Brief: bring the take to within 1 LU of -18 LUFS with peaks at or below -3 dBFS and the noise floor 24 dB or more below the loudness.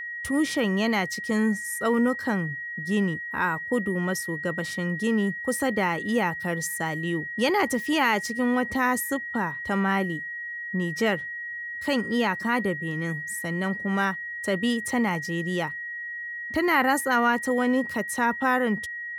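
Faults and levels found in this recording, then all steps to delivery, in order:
steady tone 1900 Hz; tone level -32 dBFS; loudness -26.0 LUFS; peak -10.0 dBFS; loudness target -18.0 LUFS
-> notch 1900 Hz, Q 30; gain +8 dB; limiter -3 dBFS

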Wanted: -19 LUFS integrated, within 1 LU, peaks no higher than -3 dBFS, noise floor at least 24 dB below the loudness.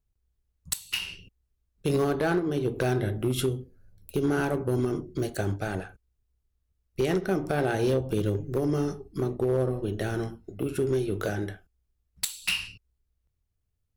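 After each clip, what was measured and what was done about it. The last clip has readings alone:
clipped 0.6%; flat tops at -18.5 dBFS; loudness -29.0 LUFS; peak -18.5 dBFS; loudness target -19.0 LUFS
-> clip repair -18.5 dBFS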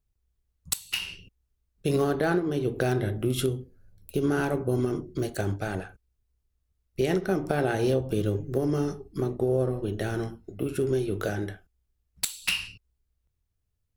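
clipped 0.0%; loudness -28.5 LUFS; peak -9.5 dBFS; loudness target -19.0 LUFS
-> gain +9.5 dB; limiter -3 dBFS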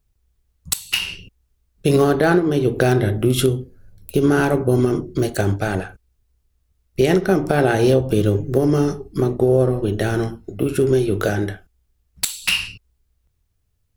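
loudness -19.0 LUFS; peak -3.0 dBFS; noise floor -68 dBFS

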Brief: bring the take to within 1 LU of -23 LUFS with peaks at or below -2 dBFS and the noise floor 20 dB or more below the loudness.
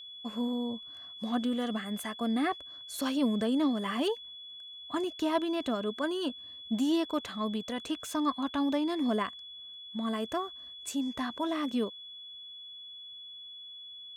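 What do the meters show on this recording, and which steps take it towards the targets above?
steady tone 3400 Hz; tone level -44 dBFS; loudness -32.5 LUFS; peak -16.0 dBFS; loudness target -23.0 LUFS
-> notch 3400 Hz, Q 30; gain +9.5 dB

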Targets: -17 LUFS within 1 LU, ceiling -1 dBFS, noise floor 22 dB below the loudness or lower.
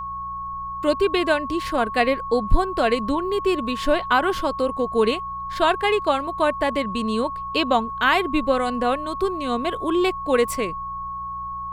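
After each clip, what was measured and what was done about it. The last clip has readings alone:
hum 60 Hz; harmonics up to 180 Hz; hum level -42 dBFS; steady tone 1100 Hz; tone level -28 dBFS; loudness -22.5 LUFS; peak -3.5 dBFS; loudness target -17.0 LUFS
-> de-hum 60 Hz, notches 3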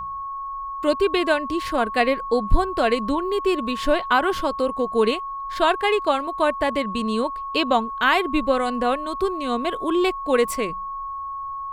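hum none; steady tone 1100 Hz; tone level -28 dBFS
-> notch 1100 Hz, Q 30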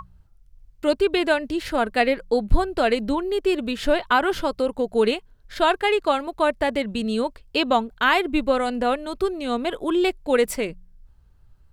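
steady tone none; loudness -22.5 LUFS; peak -4.5 dBFS; loudness target -17.0 LUFS
-> gain +5.5 dB; limiter -1 dBFS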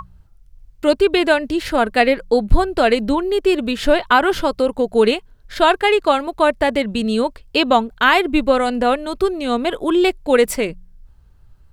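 loudness -17.5 LUFS; peak -1.0 dBFS; noise floor -50 dBFS

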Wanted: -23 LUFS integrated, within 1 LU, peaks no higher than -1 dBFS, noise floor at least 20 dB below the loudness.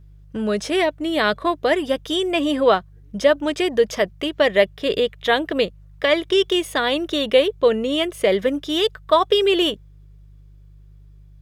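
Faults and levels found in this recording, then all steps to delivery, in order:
hum 50 Hz; harmonics up to 150 Hz; hum level -43 dBFS; loudness -20.0 LUFS; peak -3.0 dBFS; loudness target -23.0 LUFS
-> de-hum 50 Hz, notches 3; gain -3 dB

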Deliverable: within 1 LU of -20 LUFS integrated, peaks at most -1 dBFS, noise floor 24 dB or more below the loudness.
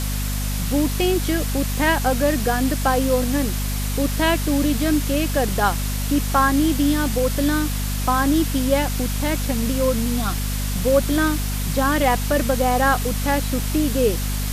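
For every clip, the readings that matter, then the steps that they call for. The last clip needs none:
hum 50 Hz; harmonics up to 250 Hz; hum level -22 dBFS; noise floor -24 dBFS; noise floor target -45 dBFS; loudness -20.5 LUFS; peak -5.0 dBFS; loudness target -20.0 LUFS
-> notches 50/100/150/200/250 Hz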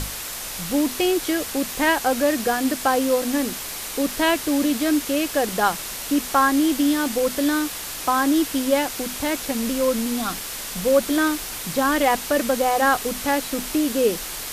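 hum none; noise floor -32 dBFS; noise floor target -46 dBFS
-> denoiser 14 dB, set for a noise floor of -32 dBFS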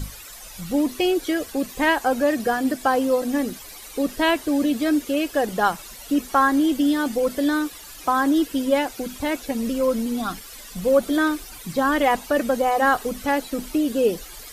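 noise floor -41 dBFS; noise floor target -47 dBFS
-> denoiser 6 dB, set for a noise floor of -41 dBFS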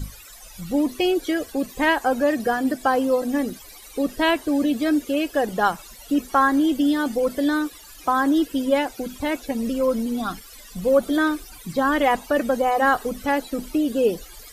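noise floor -44 dBFS; noise floor target -47 dBFS
-> denoiser 6 dB, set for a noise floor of -44 dBFS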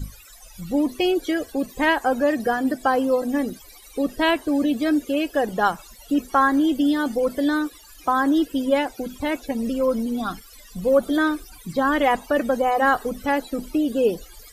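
noise floor -47 dBFS; loudness -22.5 LUFS; peak -6.0 dBFS; loudness target -20.0 LUFS
-> gain +2.5 dB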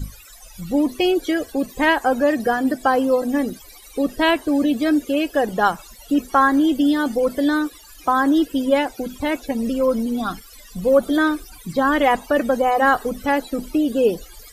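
loudness -20.0 LUFS; peak -3.5 dBFS; noise floor -44 dBFS

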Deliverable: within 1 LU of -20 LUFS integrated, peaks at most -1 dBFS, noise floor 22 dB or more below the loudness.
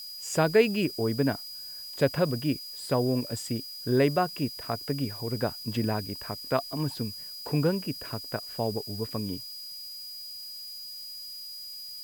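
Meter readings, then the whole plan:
steady tone 4900 Hz; tone level -39 dBFS; noise floor -41 dBFS; noise floor target -52 dBFS; loudness -30.0 LUFS; peak -9.5 dBFS; loudness target -20.0 LUFS
-> notch 4900 Hz, Q 30; denoiser 11 dB, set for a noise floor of -41 dBFS; gain +10 dB; limiter -1 dBFS

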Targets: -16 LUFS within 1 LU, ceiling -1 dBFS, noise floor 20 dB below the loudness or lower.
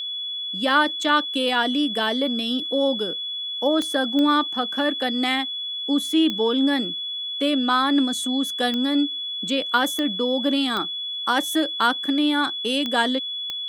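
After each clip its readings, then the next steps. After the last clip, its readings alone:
clicks 8; steady tone 3400 Hz; tone level -27 dBFS; loudness -22.0 LUFS; peak -6.5 dBFS; loudness target -16.0 LUFS
-> de-click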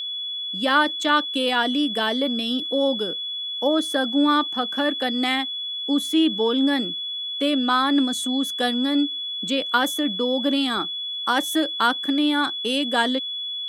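clicks 0; steady tone 3400 Hz; tone level -27 dBFS
-> notch 3400 Hz, Q 30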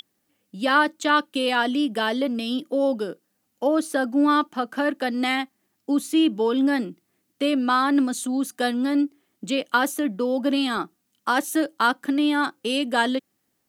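steady tone none; loudness -23.5 LUFS; peak -7.5 dBFS; loudness target -16.0 LUFS
-> gain +7.5 dB; limiter -1 dBFS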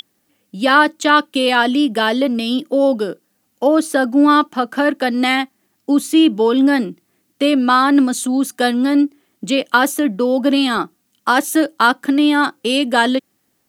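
loudness -16.0 LUFS; peak -1.0 dBFS; noise floor -66 dBFS

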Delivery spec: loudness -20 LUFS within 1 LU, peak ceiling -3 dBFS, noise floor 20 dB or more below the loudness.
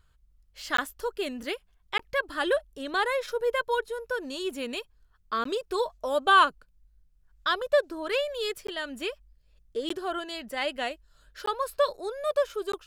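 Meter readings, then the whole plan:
dropouts 7; longest dropout 14 ms; loudness -29.0 LUFS; peak -9.5 dBFS; loudness target -20.0 LUFS
-> interpolate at 0.77/1.98/5.44/8.67/9.89/11.46/12.72, 14 ms; gain +9 dB; limiter -3 dBFS

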